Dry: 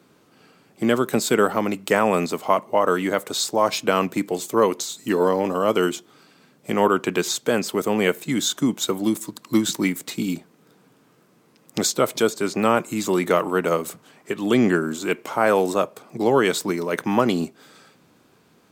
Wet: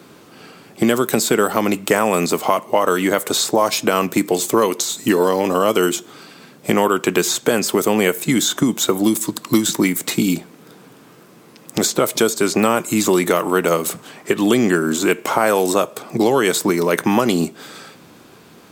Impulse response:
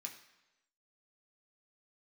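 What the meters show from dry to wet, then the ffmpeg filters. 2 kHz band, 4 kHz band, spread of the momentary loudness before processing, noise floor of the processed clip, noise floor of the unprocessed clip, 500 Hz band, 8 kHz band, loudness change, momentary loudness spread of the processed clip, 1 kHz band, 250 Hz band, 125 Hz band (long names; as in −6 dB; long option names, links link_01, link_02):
+4.5 dB, +5.5 dB, 7 LU, −46 dBFS, −58 dBFS, +3.5 dB, +7.5 dB, +4.5 dB, 5 LU, +3.5 dB, +5.0 dB, +4.5 dB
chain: -filter_complex "[0:a]acrossover=split=2700|5400[link_01][link_02][link_03];[link_01]acompressor=threshold=-26dB:ratio=4[link_04];[link_02]acompressor=threshold=-46dB:ratio=4[link_05];[link_03]acompressor=threshold=-34dB:ratio=4[link_06];[link_04][link_05][link_06]amix=inputs=3:normalize=0,asplit=2[link_07][link_08];[1:a]atrim=start_sample=2205,asetrate=61740,aresample=44100[link_09];[link_08][link_09]afir=irnorm=-1:irlink=0,volume=-8dB[link_10];[link_07][link_10]amix=inputs=2:normalize=0,alimiter=level_in=13dB:limit=-1dB:release=50:level=0:latency=1,volume=-1dB"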